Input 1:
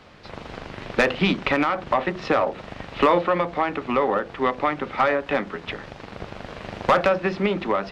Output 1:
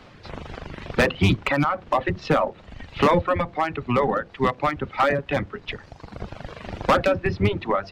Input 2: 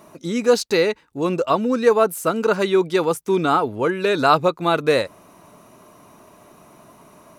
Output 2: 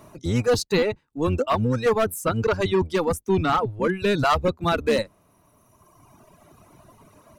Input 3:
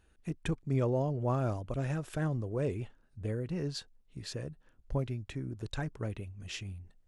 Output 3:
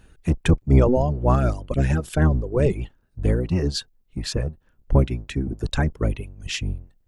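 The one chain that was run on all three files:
octave divider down 1 oct, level +2 dB; hard clipper -12.5 dBFS; reverb removal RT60 1.9 s; normalise loudness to -23 LUFS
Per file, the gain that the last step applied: +1.0 dB, -2.0 dB, +13.0 dB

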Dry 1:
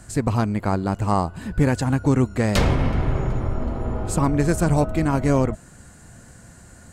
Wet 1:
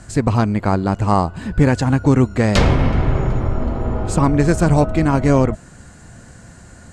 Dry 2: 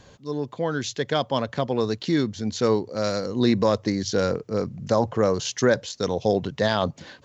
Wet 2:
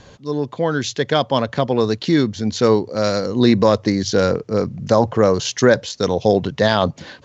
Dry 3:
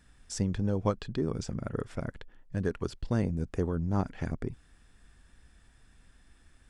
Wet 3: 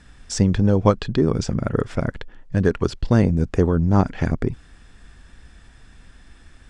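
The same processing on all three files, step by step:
low-pass 7.4 kHz 12 dB/octave; peak normalisation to -2 dBFS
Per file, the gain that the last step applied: +5.0 dB, +6.5 dB, +12.5 dB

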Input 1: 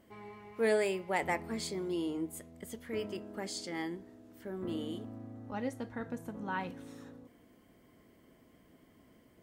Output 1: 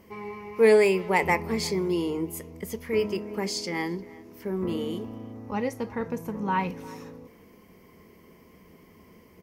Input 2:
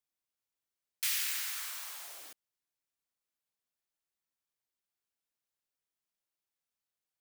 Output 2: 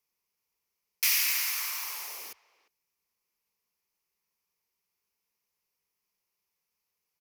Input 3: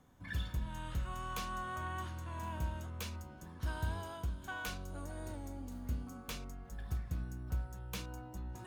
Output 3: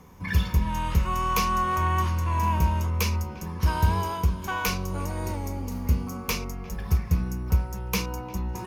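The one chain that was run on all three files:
rippled EQ curve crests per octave 0.82, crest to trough 9 dB; speakerphone echo 350 ms, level -20 dB; normalise loudness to -27 LUFS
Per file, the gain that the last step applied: +8.0 dB, +6.0 dB, +14.0 dB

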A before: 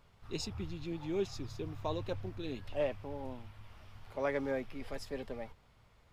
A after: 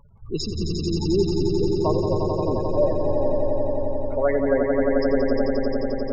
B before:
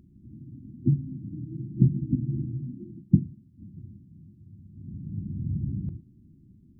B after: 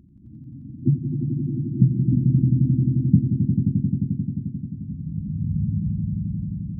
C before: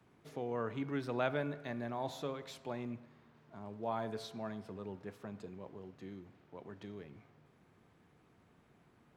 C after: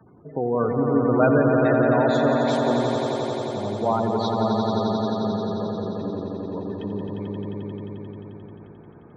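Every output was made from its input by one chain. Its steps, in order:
spectral gate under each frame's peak -15 dB strong; echo with a slow build-up 88 ms, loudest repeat 5, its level -6 dB; normalise loudness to -23 LUFS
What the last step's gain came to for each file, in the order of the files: +12.5 dB, +3.5 dB, +15.0 dB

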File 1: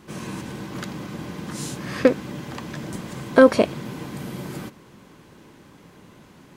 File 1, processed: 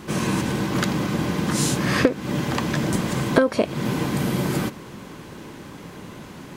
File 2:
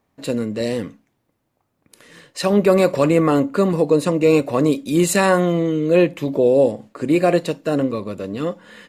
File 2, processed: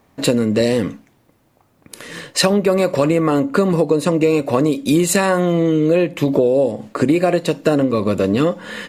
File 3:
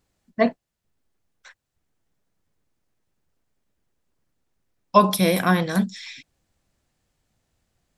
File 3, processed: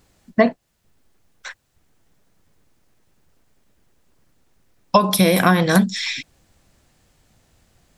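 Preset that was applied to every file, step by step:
compression 16:1, threshold -24 dBFS; peak normalisation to -1.5 dBFS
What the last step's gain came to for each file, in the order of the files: +10.0 dB, +12.5 dB, +13.5 dB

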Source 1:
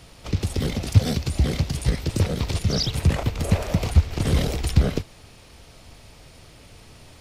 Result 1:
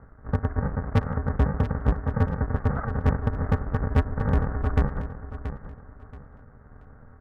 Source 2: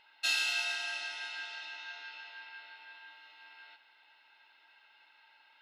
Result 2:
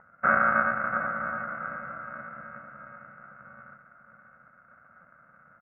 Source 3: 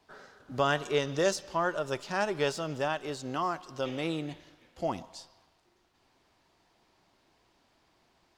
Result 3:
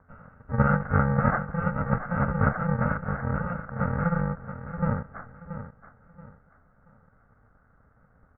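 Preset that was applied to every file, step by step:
bit-reversed sample order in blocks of 128 samples; steep low-pass 1.8 kHz 72 dB/octave; hard clipper -16 dBFS; feedback delay 679 ms, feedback 29%, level -11 dB; normalise loudness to -27 LUFS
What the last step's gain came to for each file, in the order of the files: +1.0 dB, +18.0 dB, +17.5 dB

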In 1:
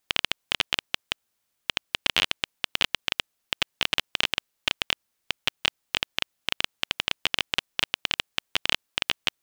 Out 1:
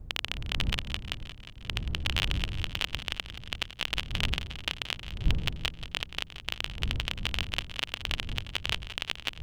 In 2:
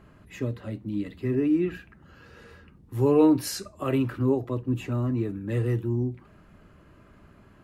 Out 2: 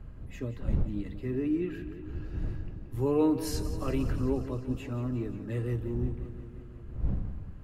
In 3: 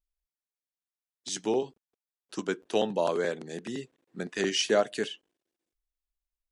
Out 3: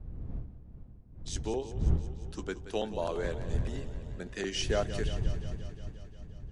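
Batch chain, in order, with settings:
wind noise 81 Hz -29 dBFS; modulated delay 177 ms, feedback 72%, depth 51 cents, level -13 dB; trim -6.5 dB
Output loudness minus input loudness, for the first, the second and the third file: -5.0 LU, -6.5 LU, -5.0 LU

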